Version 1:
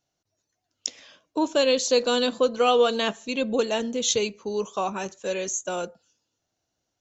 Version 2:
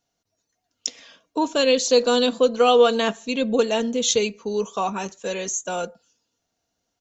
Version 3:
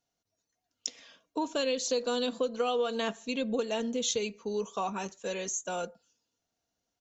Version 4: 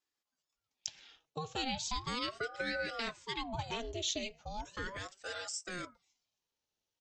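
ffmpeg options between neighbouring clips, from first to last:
-af "aecho=1:1:4.3:0.37,volume=2dB"
-af "acompressor=threshold=-20dB:ratio=4,volume=-7dB"
-af "equalizer=f=3.3k:w=0.89:g=7.5,aeval=exprs='val(0)*sin(2*PI*590*n/s+590*0.75/0.37*sin(2*PI*0.37*n/s))':c=same,volume=-6dB"

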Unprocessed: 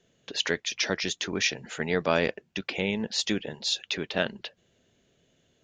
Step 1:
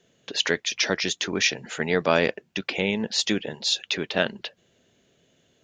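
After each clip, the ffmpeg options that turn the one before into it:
-af "lowshelf=f=67:g=-10.5,volume=4dB"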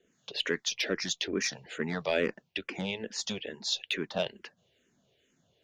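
-filter_complex "[0:a]acrossover=split=1100[a][b];[a]aeval=exprs='val(0)*(1-0.5/2+0.5/2*cos(2*PI*2.2*n/s))':c=same[c];[b]aeval=exprs='val(0)*(1-0.5/2-0.5/2*cos(2*PI*2.2*n/s))':c=same[d];[c][d]amix=inputs=2:normalize=0,aeval=exprs='(tanh(4.47*val(0)+0.05)-tanh(0.05))/4.47':c=same,asplit=2[e][f];[f]afreqshift=-2.3[g];[e][g]amix=inputs=2:normalize=1,volume=-1.5dB"

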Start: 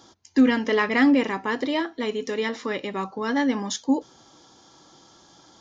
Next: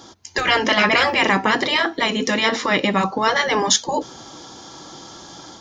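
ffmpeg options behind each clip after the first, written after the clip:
-af "afftfilt=real='re*lt(hypot(re,im),0.251)':imag='im*lt(hypot(re,im),0.251)':win_size=1024:overlap=0.75,dynaudnorm=f=150:g=3:m=5dB,volume=9dB"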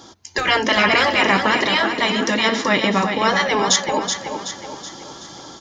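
-af "aecho=1:1:376|752|1128|1504|1880|2256:0.447|0.214|0.103|0.0494|0.0237|0.0114"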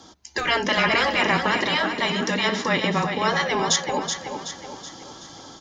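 -af "afreqshift=-21,volume=-4.5dB"

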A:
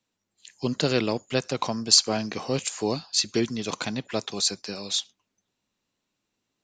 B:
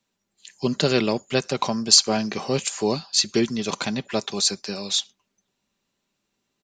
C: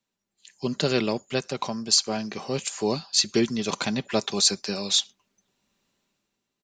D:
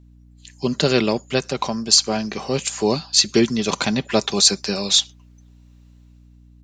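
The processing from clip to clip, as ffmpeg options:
-af "aecho=1:1:5.1:0.32,volume=3dB"
-af "dynaudnorm=f=110:g=13:m=12dB,volume=-6.5dB"
-af "aeval=exprs='val(0)+0.00224*(sin(2*PI*60*n/s)+sin(2*PI*2*60*n/s)/2+sin(2*PI*3*60*n/s)/3+sin(2*PI*4*60*n/s)/4+sin(2*PI*5*60*n/s)/5)':c=same,volume=6dB"

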